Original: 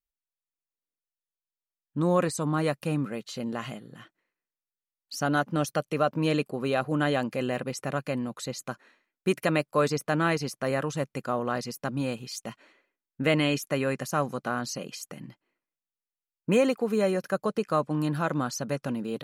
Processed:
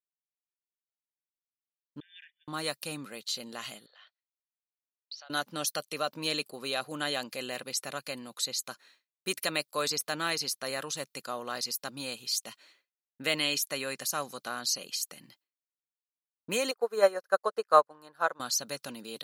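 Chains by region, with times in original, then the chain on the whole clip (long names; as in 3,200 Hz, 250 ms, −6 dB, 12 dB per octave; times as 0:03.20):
0:02.00–0:02.48: downward expander −21 dBFS + linear-phase brick-wall band-pass 1,500–3,600 Hz + downward compressor 3 to 1, threshold −48 dBFS
0:03.86–0:05.30: elliptic band-pass filter 580–4,500 Hz + downward compressor 2.5 to 1, threshold −51 dBFS
0:16.71–0:18.40: flat-topped bell 840 Hz +14.5 dB 2.5 octaves + expander for the loud parts 2.5 to 1, over −28 dBFS
whole clip: RIAA equalisation recording; downward expander −57 dBFS; parametric band 4,100 Hz +9 dB 0.75 octaves; level −6.5 dB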